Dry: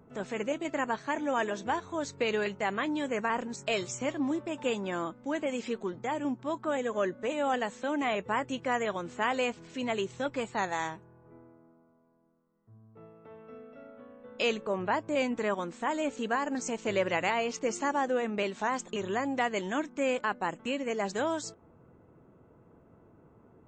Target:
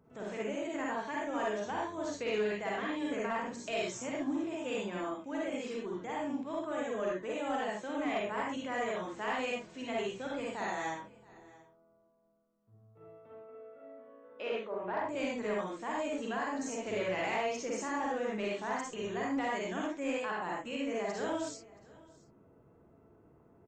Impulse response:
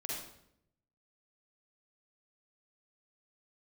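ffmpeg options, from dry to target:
-filter_complex "[0:a]asettb=1/sr,asplit=3[a][b][c];[a]atrim=end=13.334[d];[b]atrim=start=13.33:end=15,asetpts=PTS-STARTPTS,afade=t=in:d=0.004:c=qsin,afade=t=out:st=1.666:d=0.004:c=qsin,highpass=280,lowpass=2.1k[e];[c]atrim=start=14.996[f];[d][e]acrossfade=d=0.004:c1=hsin:c2=qsin[g];[g][f]acrossfade=d=0.004:c1=qsin:c2=hsin[h];[1:a]atrim=start_sample=2205,atrim=end_sample=6174[i];[h][i]afir=irnorm=-1:irlink=0,aeval=exprs='0.168*(cos(1*acos(clip(val(0)/0.168,-1,1)))-cos(1*PI/2))+0.00944*(cos(5*acos(clip(val(0)/0.168,-1,1)))-cos(5*PI/2))':c=same,aecho=1:1:676:0.075,volume=-6.5dB"

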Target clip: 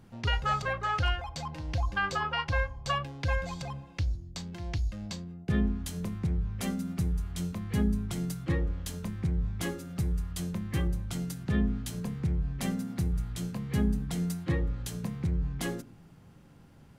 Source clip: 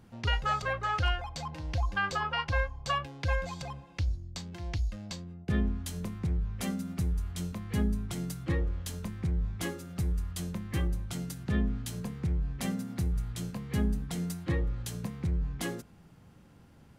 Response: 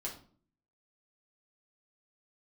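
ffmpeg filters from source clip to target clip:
-filter_complex "[0:a]asplit=2[a][b];[1:a]atrim=start_sample=2205,lowshelf=f=490:g=12[c];[b][c]afir=irnorm=-1:irlink=0,volume=-20.5dB[d];[a][d]amix=inputs=2:normalize=0"

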